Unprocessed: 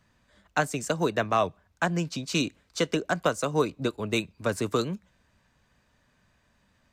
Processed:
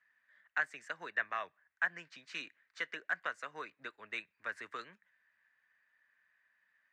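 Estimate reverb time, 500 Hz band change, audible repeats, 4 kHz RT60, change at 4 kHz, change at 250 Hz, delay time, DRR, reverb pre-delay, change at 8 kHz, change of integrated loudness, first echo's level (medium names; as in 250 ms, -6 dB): no reverb, -23.0 dB, no echo, no reverb, -15.5 dB, -29.0 dB, no echo, no reverb, no reverb, -24.5 dB, -11.5 dB, no echo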